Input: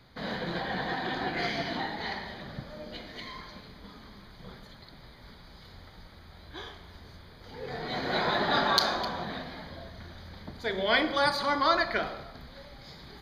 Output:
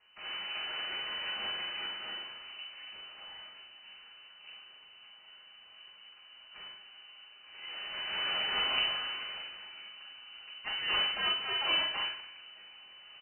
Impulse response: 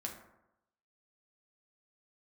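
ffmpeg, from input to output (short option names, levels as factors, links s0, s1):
-filter_complex "[0:a]aeval=exprs='abs(val(0))':c=same,asplit=2[s0][s1];[s1]adelay=43,volume=0.501[s2];[s0][s2]amix=inputs=2:normalize=0[s3];[1:a]atrim=start_sample=2205,atrim=end_sample=3528[s4];[s3][s4]afir=irnorm=-1:irlink=0,lowpass=f=2600:t=q:w=0.5098,lowpass=f=2600:t=q:w=0.6013,lowpass=f=2600:t=q:w=0.9,lowpass=f=2600:t=q:w=2.563,afreqshift=-3000,volume=0.668"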